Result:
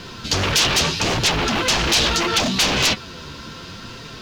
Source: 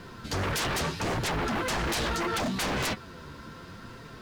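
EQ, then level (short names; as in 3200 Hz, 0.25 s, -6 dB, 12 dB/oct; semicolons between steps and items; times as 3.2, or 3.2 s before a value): band shelf 4100 Hz +9 dB; +7.5 dB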